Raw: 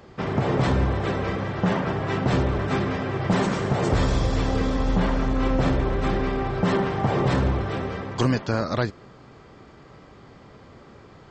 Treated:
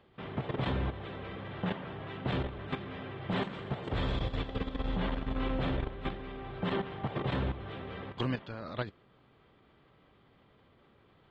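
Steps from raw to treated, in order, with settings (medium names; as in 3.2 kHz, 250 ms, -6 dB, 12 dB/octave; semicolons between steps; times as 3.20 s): level held to a coarse grid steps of 11 dB; resonant high shelf 4.5 kHz -10 dB, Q 3; trim -9 dB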